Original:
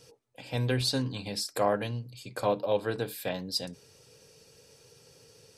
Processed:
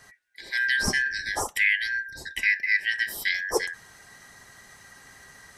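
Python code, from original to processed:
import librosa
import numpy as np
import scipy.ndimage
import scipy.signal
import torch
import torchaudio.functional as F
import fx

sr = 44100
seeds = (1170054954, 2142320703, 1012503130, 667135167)

p1 = fx.band_shuffle(x, sr, order='4123')
p2 = fx.rider(p1, sr, range_db=5, speed_s=0.5)
p3 = p1 + (p2 * librosa.db_to_amplitude(1.0))
y = p3 * librosa.db_to_amplitude(-2.0)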